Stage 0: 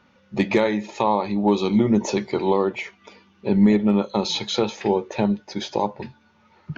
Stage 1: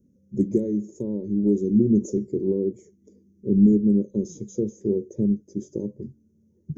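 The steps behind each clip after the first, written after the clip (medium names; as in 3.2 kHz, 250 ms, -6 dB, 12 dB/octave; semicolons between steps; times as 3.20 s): inverse Chebyshev band-stop 720–4400 Hz, stop band 40 dB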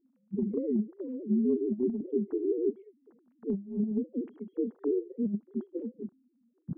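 formants replaced by sine waves; compressor with a negative ratio -22 dBFS, ratio -0.5; trim -5 dB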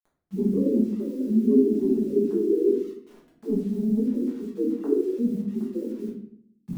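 word length cut 10-bit, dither none; simulated room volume 110 m³, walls mixed, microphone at 1.4 m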